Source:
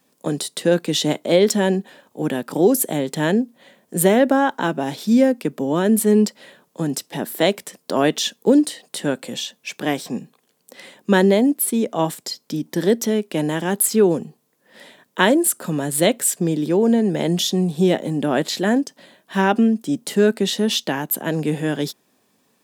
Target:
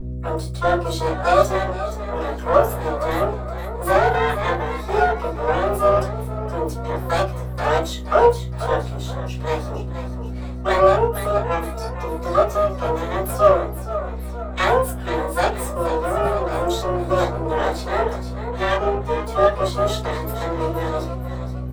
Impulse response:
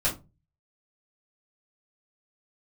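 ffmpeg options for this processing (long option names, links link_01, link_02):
-filter_complex "[0:a]flanger=delay=4.2:depth=6.9:regen=-69:speed=1.6:shape=triangular,afreqshift=160,equalizer=frequency=72:width_type=o:width=1.6:gain=-6.5,asplit=6[link_01][link_02][link_03][link_04][link_05][link_06];[link_02]adelay=490,afreqshift=40,volume=-9.5dB[link_07];[link_03]adelay=980,afreqshift=80,volume=-16.4dB[link_08];[link_04]adelay=1470,afreqshift=120,volume=-23.4dB[link_09];[link_05]adelay=1960,afreqshift=160,volume=-30.3dB[link_10];[link_06]adelay=2450,afreqshift=200,volume=-37.2dB[link_11];[link_01][link_07][link_08][link_09][link_10][link_11]amix=inputs=6:normalize=0,aeval=exprs='val(0)+0.0224*(sin(2*PI*60*n/s)+sin(2*PI*2*60*n/s)/2+sin(2*PI*3*60*n/s)/3+sin(2*PI*4*60*n/s)/4+sin(2*PI*5*60*n/s)/5)':channel_layout=same,asplit=2[link_12][link_13];[link_13]acrusher=bits=2:mix=0:aa=0.5,volume=-9dB[link_14];[link_12][link_14]amix=inputs=2:normalize=0,asetrate=45938,aresample=44100[link_15];[1:a]atrim=start_sample=2205,afade=type=out:start_time=0.37:duration=0.01,atrim=end_sample=16758[link_16];[link_15][link_16]afir=irnorm=-1:irlink=0,asplit=2[link_17][link_18];[link_18]asetrate=88200,aresample=44100,atempo=0.5,volume=-5dB[link_19];[link_17][link_19]amix=inputs=2:normalize=0,highshelf=frequency=4400:gain=-9,areverse,acompressor=mode=upward:threshold=-13dB:ratio=2.5,areverse,volume=-11dB"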